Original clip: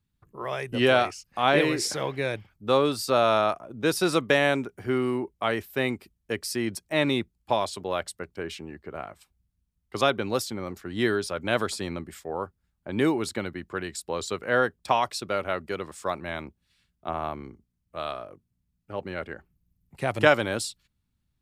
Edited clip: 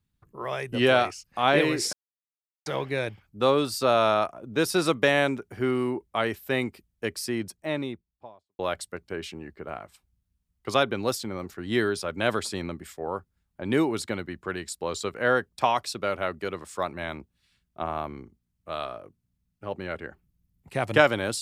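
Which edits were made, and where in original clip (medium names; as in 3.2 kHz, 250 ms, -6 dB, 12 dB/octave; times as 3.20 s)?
1.93 s: insert silence 0.73 s
6.32–7.86 s: studio fade out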